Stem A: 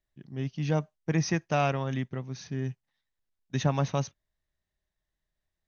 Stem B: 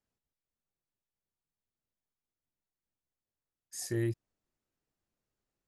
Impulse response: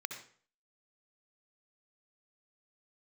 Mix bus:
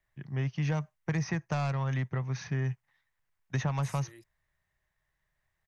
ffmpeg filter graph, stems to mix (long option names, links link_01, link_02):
-filter_complex "[0:a]equalizer=frequency=125:width_type=o:width=1:gain=8,equalizer=frequency=250:width_type=o:width=1:gain=-6,equalizer=frequency=1000:width_type=o:width=1:gain=7,equalizer=frequency=2000:width_type=o:width=1:gain=9,equalizer=frequency=4000:width_type=o:width=1:gain=-4,asoftclip=type=tanh:threshold=-15dB,volume=2dB[link_01];[1:a]highpass=frequency=1200:poles=1,adelay=100,volume=-6.5dB[link_02];[link_01][link_02]amix=inputs=2:normalize=0,acrossover=split=230|1300|4800[link_03][link_04][link_05][link_06];[link_03]acompressor=threshold=-31dB:ratio=4[link_07];[link_04]acompressor=threshold=-37dB:ratio=4[link_08];[link_05]acompressor=threshold=-45dB:ratio=4[link_09];[link_06]acompressor=threshold=-48dB:ratio=4[link_10];[link_07][link_08][link_09][link_10]amix=inputs=4:normalize=0"